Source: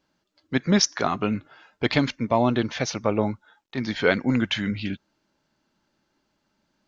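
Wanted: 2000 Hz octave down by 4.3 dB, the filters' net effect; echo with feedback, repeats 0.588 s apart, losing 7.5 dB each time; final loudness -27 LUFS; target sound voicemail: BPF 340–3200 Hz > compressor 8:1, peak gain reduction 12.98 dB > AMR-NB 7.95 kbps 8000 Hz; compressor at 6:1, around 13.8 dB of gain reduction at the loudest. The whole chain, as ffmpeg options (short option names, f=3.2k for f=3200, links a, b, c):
-af "equalizer=f=2k:t=o:g=-5,acompressor=threshold=-31dB:ratio=6,highpass=340,lowpass=3.2k,aecho=1:1:588|1176|1764|2352|2940:0.422|0.177|0.0744|0.0312|0.0131,acompressor=threshold=-42dB:ratio=8,volume=22dB" -ar 8000 -c:a libopencore_amrnb -b:a 7950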